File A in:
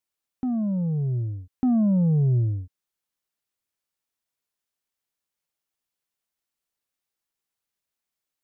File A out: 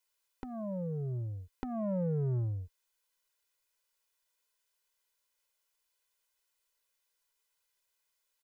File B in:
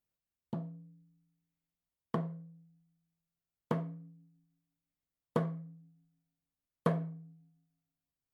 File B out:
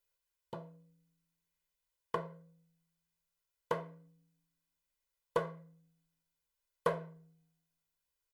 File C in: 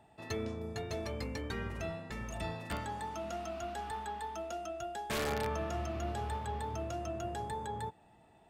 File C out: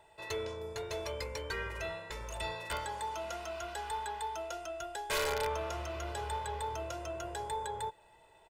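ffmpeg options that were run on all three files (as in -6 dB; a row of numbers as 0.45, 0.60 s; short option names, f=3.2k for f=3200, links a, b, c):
-filter_complex "[0:a]aecho=1:1:2:0.77,asplit=2[a][b];[b]asoftclip=type=tanh:threshold=-30.5dB,volume=-6dB[c];[a][c]amix=inputs=2:normalize=0,equalizer=f=130:t=o:w=2.7:g=-14"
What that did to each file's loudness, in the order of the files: -12.0, -2.0, +1.0 LU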